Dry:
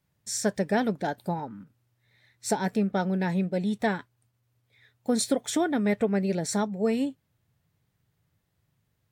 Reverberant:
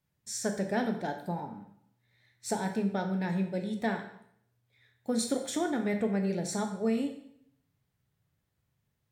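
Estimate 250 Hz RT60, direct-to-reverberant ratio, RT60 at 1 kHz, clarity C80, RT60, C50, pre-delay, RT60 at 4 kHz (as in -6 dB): 0.80 s, 5.0 dB, 0.65 s, 11.0 dB, 0.65 s, 8.0 dB, 6 ms, 0.65 s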